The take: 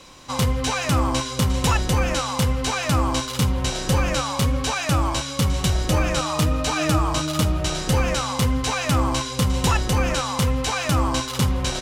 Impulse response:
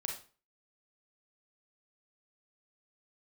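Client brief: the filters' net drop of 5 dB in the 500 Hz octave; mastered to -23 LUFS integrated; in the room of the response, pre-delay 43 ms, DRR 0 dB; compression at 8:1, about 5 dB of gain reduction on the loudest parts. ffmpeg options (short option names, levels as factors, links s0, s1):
-filter_complex "[0:a]equalizer=f=500:t=o:g=-6,acompressor=threshold=0.0891:ratio=8,asplit=2[s0][s1];[1:a]atrim=start_sample=2205,adelay=43[s2];[s1][s2]afir=irnorm=-1:irlink=0,volume=0.944[s3];[s0][s3]amix=inputs=2:normalize=0,volume=1.06"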